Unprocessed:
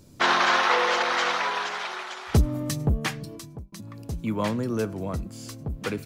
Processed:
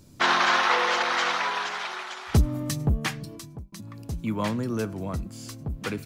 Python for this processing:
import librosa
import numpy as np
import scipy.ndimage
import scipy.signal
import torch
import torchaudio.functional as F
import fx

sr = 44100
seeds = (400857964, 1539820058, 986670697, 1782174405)

y = fx.peak_eq(x, sr, hz=490.0, db=-3.5, octaves=0.91)